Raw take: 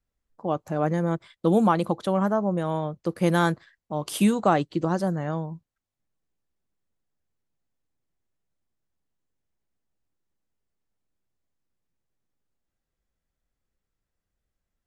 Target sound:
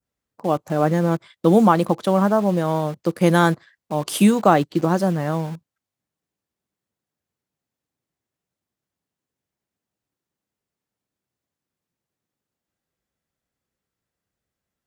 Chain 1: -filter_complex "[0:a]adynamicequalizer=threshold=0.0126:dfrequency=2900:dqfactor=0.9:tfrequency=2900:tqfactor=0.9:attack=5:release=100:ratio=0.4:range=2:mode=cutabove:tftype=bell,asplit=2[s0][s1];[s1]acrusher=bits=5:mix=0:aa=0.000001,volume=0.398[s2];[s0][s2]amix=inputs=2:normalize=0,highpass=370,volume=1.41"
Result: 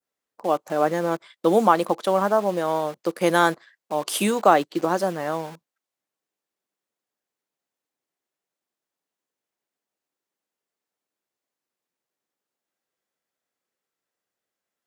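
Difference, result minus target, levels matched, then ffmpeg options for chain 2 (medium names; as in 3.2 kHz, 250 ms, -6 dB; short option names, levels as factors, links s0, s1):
125 Hz band -10.0 dB
-filter_complex "[0:a]adynamicequalizer=threshold=0.0126:dfrequency=2900:dqfactor=0.9:tfrequency=2900:tqfactor=0.9:attack=5:release=100:ratio=0.4:range=2:mode=cutabove:tftype=bell,asplit=2[s0][s1];[s1]acrusher=bits=5:mix=0:aa=0.000001,volume=0.398[s2];[s0][s2]amix=inputs=2:normalize=0,highpass=100,volume=1.41"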